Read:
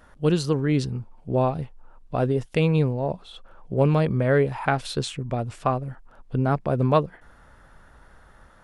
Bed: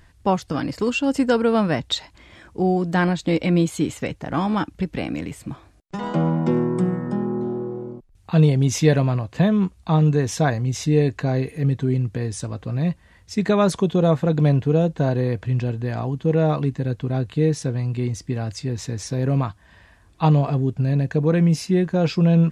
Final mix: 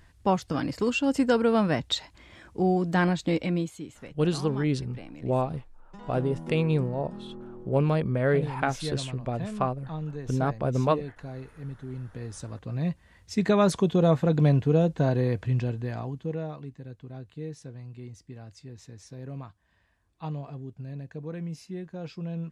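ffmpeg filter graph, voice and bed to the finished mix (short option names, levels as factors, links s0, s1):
-filter_complex "[0:a]adelay=3950,volume=0.631[s0];[1:a]volume=3.16,afade=t=out:st=3.2:d=0.62:silence=0.211349,afade=t=in:st=11.89:d=1.48:silence=0.199526,afade=t=out:st=15.48:d=1.04:silence=0.188365[s1];[s0][s1]amix=inputs=2:normalize=0"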